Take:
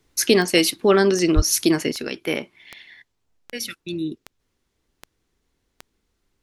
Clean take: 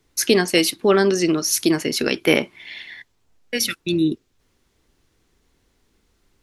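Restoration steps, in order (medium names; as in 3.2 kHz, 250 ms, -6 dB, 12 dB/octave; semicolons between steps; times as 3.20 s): de-click; 1.35–1.47 s: high-pass 140 Hz 24 dB/octave; 1.92 s: gain correction +8 dB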